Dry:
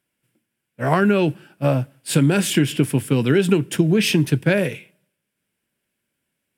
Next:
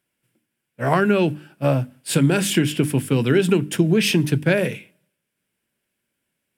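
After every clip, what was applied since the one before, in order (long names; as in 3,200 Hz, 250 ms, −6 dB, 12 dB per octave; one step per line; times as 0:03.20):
mains-hum notches 50/100/150/200/250/300 Hz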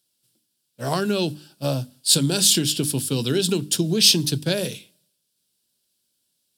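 high shelf with overshoot 3,000 Hz +12 dB, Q 3
level −5 dB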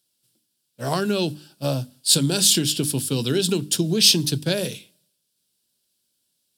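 no processing that can be heard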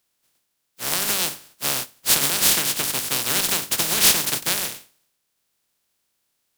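compressing power law on the bin magnitudes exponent 0.14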